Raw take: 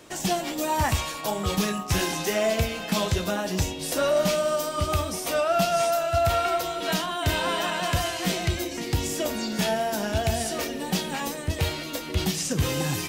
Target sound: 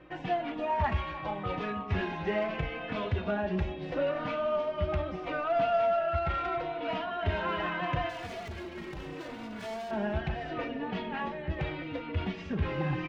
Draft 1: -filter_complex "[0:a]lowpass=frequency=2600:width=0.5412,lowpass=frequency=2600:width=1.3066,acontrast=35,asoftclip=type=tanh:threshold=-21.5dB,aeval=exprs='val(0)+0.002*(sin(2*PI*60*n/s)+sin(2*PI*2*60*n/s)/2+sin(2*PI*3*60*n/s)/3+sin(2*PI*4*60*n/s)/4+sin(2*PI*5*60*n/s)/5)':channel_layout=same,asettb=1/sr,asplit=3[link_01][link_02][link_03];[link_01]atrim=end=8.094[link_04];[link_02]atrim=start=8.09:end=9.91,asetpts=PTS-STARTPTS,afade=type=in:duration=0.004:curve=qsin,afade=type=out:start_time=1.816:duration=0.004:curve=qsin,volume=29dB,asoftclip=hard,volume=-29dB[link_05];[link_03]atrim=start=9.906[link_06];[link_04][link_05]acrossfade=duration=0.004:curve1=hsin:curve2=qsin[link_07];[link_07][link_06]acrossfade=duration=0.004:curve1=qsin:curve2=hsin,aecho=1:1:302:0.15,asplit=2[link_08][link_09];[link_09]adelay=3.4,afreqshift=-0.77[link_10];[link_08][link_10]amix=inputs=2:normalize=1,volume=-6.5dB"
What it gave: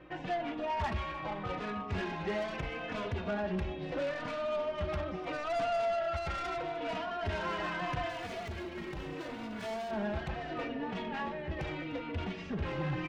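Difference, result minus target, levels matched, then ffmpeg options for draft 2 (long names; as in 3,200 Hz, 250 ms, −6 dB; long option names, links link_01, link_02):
soft clipping: distortion +13 dB
-filter_complex "[0:a]lowpass=frequency=2600:width=0.5412,lowpass=frequency=2600:width=1.3066,acontrast=35,asoftclip=type=tanh:threshold=-10.5dB,aeval=exprs='val(0)+0.002*(sin(2*PI*60*n/s)+sin(2*PI*2*60*n/s)/2+sin(2*PI*3*60*n/s)/3+sin(2*PI*4*60*n/s)/4+sin(2*PI*5*60*n/s)/5)':channel_layout=same,asettb=1/sr,asplit=3[link_01][link_02][link_03];[link_01]atrim=end=8.094[link_04];[link_02]atrim=start=8.09:end=9.91,asetpts=PTS-STARTPTS,afade=type=in:duration=0.004:curve=qsin,afade=type=out:start_time=1.816:duration=0.004:curve=qsin,volume=29dB,asoftclip=hard,volume=-29dB[link_05];[link_03]atrim=start=9.906[link_06];[link_04][link_05]acrossfade=duration=0.004:curve1=hsin:curve2=qsin[link_07];[link_07][link_06]acrossfade=duration=0.004:curve1=qsin:curve2=hsin,aecho=1:1:302:0.15,asplit=2[link_08][link_09];[link_09]adelay=3.4,afreqshift=-0.77[link_10];[link_08][link_10]amix=inputs=2:normalize=1,volume=-6.5dB"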